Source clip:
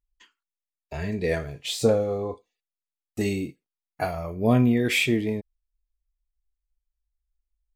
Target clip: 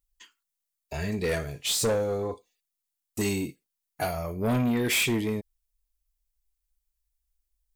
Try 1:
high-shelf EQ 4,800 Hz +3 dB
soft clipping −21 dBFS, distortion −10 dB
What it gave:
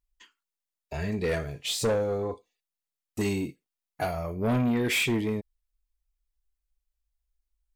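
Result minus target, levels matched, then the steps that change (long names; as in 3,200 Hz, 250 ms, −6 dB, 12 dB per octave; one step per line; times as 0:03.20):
8,000 Hz band −5.0 dB
change: high-shelf EQ 4,800 Hz +13 dB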